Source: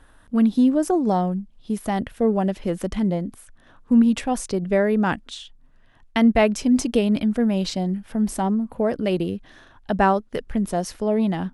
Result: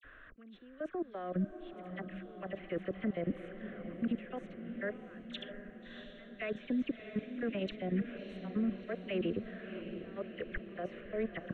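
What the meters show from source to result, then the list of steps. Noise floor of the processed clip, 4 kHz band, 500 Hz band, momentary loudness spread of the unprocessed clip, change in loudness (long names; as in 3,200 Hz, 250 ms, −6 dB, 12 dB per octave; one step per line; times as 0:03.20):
−55 dBFS, −15.5 dB, −16.0 dB, 11 LU, −17.5 dB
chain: volume swells 483 ms
gain on a spectral selection 0:00.50–0:01.28, 320–10,000 Hz +9 dB
three-way crossover with the lows and the highs turned down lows −17 dB, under 460 Hz, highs −15 dB, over 3,400 Hz
reversed playback
downward compressor 16 to 1, threshold −39 dBFS, peak gain reduction 29 dB
reversed playback
brickwall limiter −35 dBFS, peak gain reduction 10 dB
output level in coarse steps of 22 dB
high-frequency loss of the air 200 metres
phaser with its sweep stopped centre 2,100 Hz, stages 4
all-pass dispersion lows, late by 44 ms, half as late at 2,200 Hz
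on a send: feedback delay with all-pass diffusion 658 ms, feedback 62%, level −9 dB
on the sum: level +14.5 dB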